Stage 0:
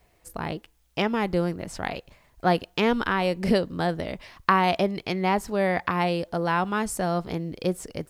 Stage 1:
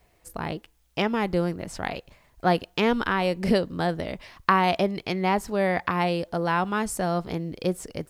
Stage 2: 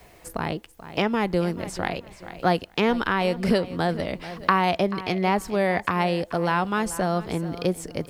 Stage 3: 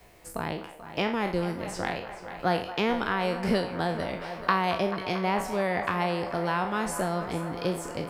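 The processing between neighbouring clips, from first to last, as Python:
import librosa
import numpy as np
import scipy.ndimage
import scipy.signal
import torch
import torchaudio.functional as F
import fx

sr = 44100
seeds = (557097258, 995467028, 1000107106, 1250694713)

y1 = x
y2 = fx.echo_feedback(y1, sr, ms=434, feedback_pct=24, wet_db=-17.0)
y2 = fx.band_squash(y2, sr, depth_pct=40)
y2 = F.gain(torch.from_numpy(y2), 1.0).numpy()
y3 = fx.spec_trails(y2, sr, decay_s=0.43)
y3 = fx.echo_wet_bandpass(y3, sr, ms=222, feedback_pct=85, hz=1000.0, wet_db=-12.5)
y3 = F.gain(torch.from_numpy(y3), -5.5).numpy()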